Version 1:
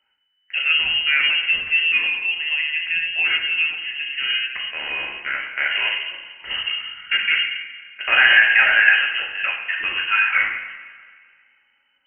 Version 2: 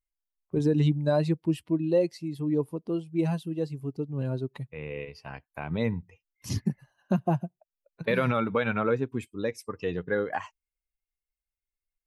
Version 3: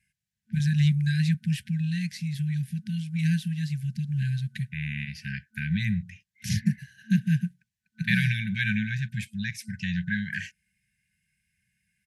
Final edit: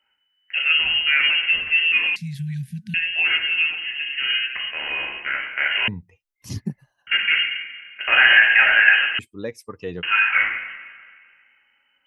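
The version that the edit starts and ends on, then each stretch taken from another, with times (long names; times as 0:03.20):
1
0:02.16–0:02.94: punch in from 3
0:05.88–0:07.07: punch in from 2
0:09.19–0:10.03: punch in from 2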